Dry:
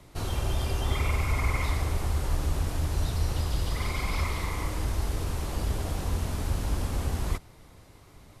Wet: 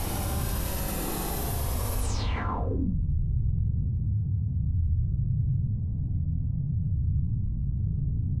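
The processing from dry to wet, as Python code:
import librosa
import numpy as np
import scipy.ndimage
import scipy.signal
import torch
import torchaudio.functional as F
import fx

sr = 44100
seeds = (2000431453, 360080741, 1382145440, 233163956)

y = fx.paulstretch(x, sr, seeds[0], factor=19.0, window_s=0.05, from_s=5.97)
y = fx.filter_sweep_lowpass(y, sr, from_hz=12000.0, to_hz=140.0, start_s=1.99, end_s=2.97, q=4.3)
y = fx.env_flatten(y, sr, amount_pct=50)
y = F.gain(torch.from_numpy(y), -4.5).numpy()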